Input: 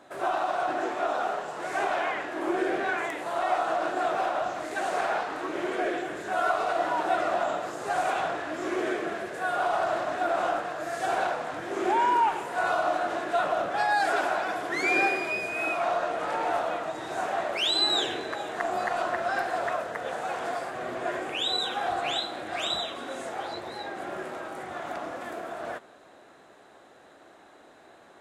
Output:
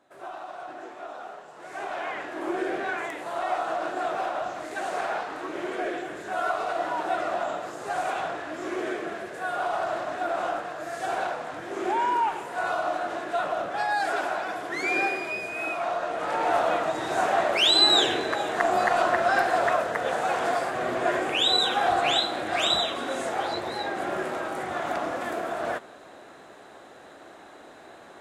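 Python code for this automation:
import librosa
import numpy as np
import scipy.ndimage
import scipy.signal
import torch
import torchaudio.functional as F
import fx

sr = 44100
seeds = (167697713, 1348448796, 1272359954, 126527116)

y = fx.gain(x, sr, db=fx.line((1.49, -11.0), (2.22, -1.5), (15.99, -1.5), (16.72, 6.0)))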